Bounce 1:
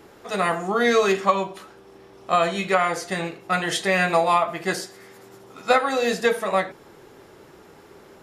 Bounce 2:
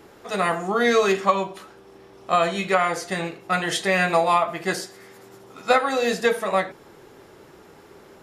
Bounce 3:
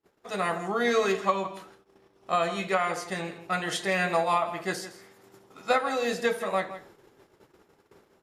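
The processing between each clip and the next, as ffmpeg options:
ffmpeg -i in.wav -af anull out.wav
ffmpeg -i in.wav -filter_complex "[0:a]asplit=2[link_01][link_02];[link_02]adelay=163.3,volume=-13dB,highshelf=frequency=4000:gain=-3.67[link_03];[link_01][link_03]amix=inputs=2:normalize=0,agate=range=-31dB:threshold=-46dB:ratio=16:detection=peak,volume=-6dB" out.wav

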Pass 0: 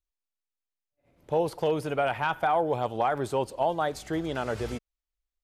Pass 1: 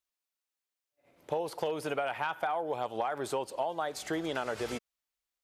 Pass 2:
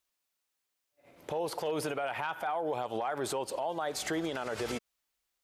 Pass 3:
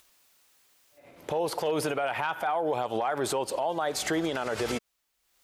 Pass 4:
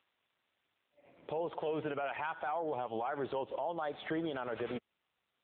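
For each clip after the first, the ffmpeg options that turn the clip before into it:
ffmpeg -i in.wav -af "highpass=frequency=460:poles=1,acompressor=threshold=-34dB:ratio=6,volume=4.5dB" out.wav
ffmpeg -i in.wav -af "alimiter=level_in=7dB:limit=-24dB:level=0:latency=1:release=101,volume=-7dB,volume=6.5dB" out.wav
ffmpeg -i in.wav -af "acompressor=mode=upward:threshold=-55dB:ratio=2.5,volume=5dB" out.wav
ffmpeg -i in.wav -af "volume=-7dB" -ar 8000 -c:a libopencore_amrnb -b:a 7400 out.amr

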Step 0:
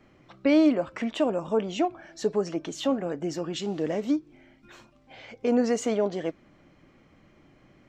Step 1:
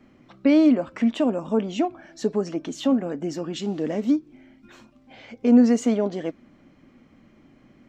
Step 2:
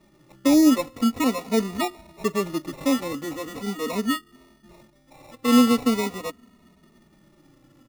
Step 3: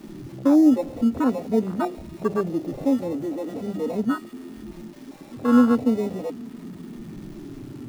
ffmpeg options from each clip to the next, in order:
ffmpeg -i in.wav -af "equalizer=frequency=240:width=3.1:gain=10.5" out.wav
ffmpeg -i in.wav -filter_complex "[0:a]acrusher=samples=28:mix=1:aa=0.000001,asplit=2[link_01][link_02];[link_02]adelay=2.9,afreqshift=-0.42[link_03];[link_01][link_03]amix=inputs=2:normalize=1,volume=1.5dB" out.wav
ffmpeg -i in.wav -af "aeval=exprs='val(0)+0.5*0.0398*sgn(val(0))':channel_layout=same,bandreject=frequency=50:width_type=h:width=6,bandreject=frequency=100:width_type=h:width=6,bandreject=frequency=150:width_type=h:width=6,bandreject=frequency=200:width_type=h:width=6,afwtdn=0.0708" out.wav

